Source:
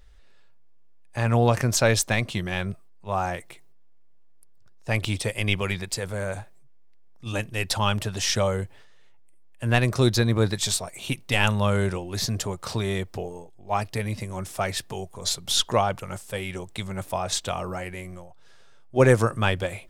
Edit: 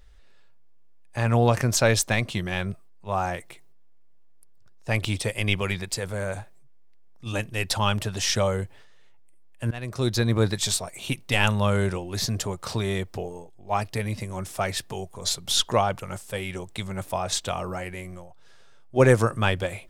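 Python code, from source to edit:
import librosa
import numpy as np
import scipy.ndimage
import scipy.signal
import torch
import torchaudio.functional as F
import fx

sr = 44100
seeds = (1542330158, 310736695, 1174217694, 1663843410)

y = fx.edit(x, sr, fx.fade_in_from(start_s=9.71, length_s=0.62, floor_db=-22.0), tone=tone)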